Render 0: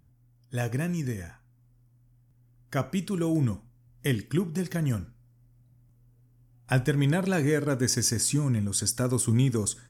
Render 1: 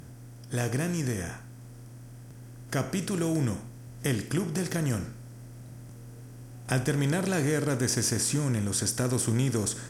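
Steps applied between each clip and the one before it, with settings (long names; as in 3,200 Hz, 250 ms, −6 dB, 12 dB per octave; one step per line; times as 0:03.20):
compressor on every frequency bin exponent 0.6
in parallel at −1.5 dB: downward compressor, threshold −30 dBFS, peak gain reduction 12 dB
on the sum: level −6.5 dB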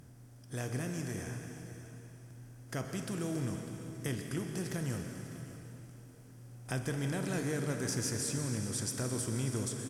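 single-tap delay 600 ms −15.5 dB
on a send at −5 dB: convolution reverb RT60 3.1 s, pre-delay 114 ms
on the sum: level −9 dB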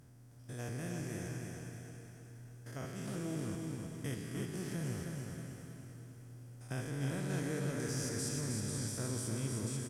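spectrum averaged block by block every 100 ms
repeating echo 315 ms, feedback 40%, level −4.5 dB
level −3 dB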